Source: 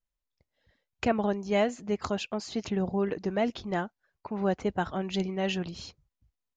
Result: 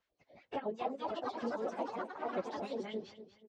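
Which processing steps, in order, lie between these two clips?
sawtooth pitch modulation +4 st, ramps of 407 ms; peaking EQ 1.2 kHz -14 dB 2 oct; in parallel at +2 dB: compression 16:1, threshold -40 dBFS, peak gain reduction 15.5 dB; on the sum: LFO band-pass sine 2.8 Hz 450–1700 Hz; ever faster or slower copies 699 ms, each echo +4 st, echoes 3; plain phase-vocoder stretch 0.53×; low-pass 5.3 kHz 12 dB/octave; feedback delay 239 ms, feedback 20%, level -17 dB; three bands compressed up and down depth 70%; trim +5 dB

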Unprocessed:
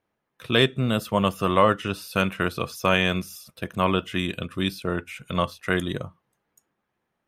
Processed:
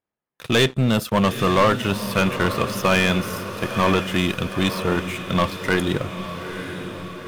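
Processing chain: waveshaping leveller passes 3; echo that smears into a reverb 906 ms, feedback 57%, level -9.5 dB; trim -4.5 dB

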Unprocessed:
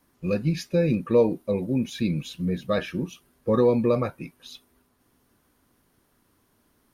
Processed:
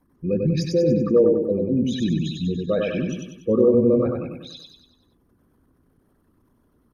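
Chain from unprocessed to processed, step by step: resonances exaggerated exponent 2; feedback delay 96 ms, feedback 49%, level -3 dB; trim +2 dB

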